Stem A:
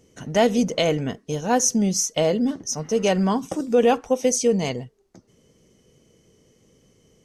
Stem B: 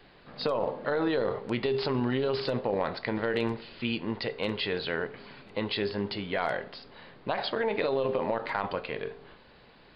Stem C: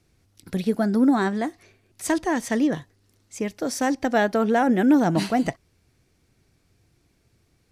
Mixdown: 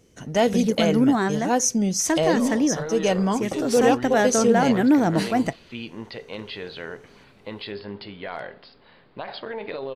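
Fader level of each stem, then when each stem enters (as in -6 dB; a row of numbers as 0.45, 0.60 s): -1.5, -4.0, 0.0 dB; 0.00, 1.90, 0.00 s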